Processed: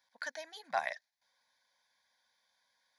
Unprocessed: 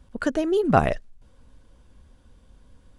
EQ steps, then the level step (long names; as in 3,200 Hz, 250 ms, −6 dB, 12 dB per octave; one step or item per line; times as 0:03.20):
high-pass filter 1,400 Hz 12 dB per octave
phaser with its sweep stopped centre 1,900 Hz, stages 8
−2.0 dB